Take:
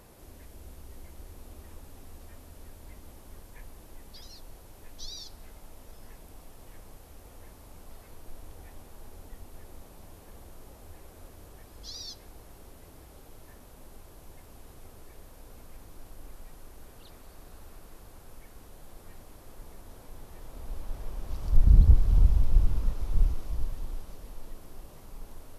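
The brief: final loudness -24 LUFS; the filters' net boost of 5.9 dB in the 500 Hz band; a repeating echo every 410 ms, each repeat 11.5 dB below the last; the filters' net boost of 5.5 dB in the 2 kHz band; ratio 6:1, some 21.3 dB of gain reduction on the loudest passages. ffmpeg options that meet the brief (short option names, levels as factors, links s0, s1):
-af "equalizer=f=500:t=o:g=7,equalizer=f=2000:t=o:g=6.5,acompressor=threshold=0.0178:ratio=6,aecho=1:1:410|820|1230:0.266|0.0718|0.0194,volume=15"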